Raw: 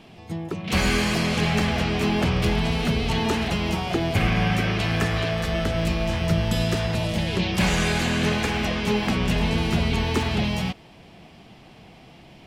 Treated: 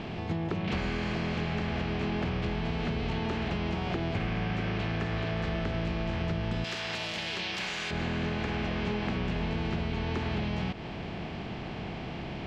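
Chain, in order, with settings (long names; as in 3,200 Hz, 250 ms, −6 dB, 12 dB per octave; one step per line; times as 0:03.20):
compressor on every frequency bin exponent 0.6
0:06.64–0:07.91: spectral tilt +4.5 dB per octave
downward compressor 10 to 1, threshold −24 dBFS, peak gain reduction 11.5 dB
high-frequency loss of the air 190 metres
level −3 dB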